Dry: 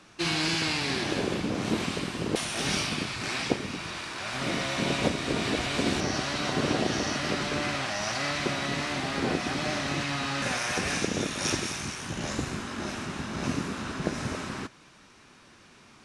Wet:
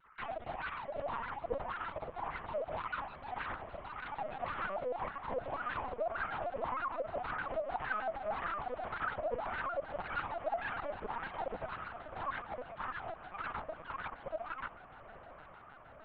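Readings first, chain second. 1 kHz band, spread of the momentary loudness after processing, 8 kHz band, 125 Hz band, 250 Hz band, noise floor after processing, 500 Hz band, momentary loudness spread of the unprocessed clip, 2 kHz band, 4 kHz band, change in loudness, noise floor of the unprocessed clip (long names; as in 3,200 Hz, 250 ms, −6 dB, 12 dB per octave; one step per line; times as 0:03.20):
−3.0 dB, 7 LU, below −40 dB, −18.5 dB, −22.0 dB, −55 dBFS, −6.0 dB, 7 LU, −10.5 dB, −25.0 dB, −10.5 dB, −55 dBFS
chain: three sine waves on the formant tracks
low shelf with overshoot 440 Hz −10.5 dB, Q 3
downward compressor 6 to 1, threshold −28 dBFS, peak gain reduction 12.5 dB
harmonic generator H 2 −33 dB, 7 −39 dB, 8 −9 dB, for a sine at −18 dBFS
LFO wah 1.8 Hz 510–1,400 Hz, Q 4.6
feedback delay with all-pass diffusion 920 ms, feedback 74%, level −15 dB
linear-prediction vocoder at 8 kHz pitch kept
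pitch modulation by a square or saw wave square 6.5 Hz, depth 160 cents
level −1.5 dB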